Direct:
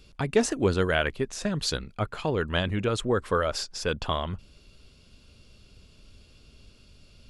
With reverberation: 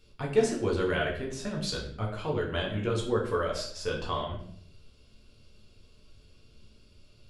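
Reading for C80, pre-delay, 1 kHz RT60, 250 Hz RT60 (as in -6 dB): 10.0 dB, 7 ms, 0.55 s, 0.85 s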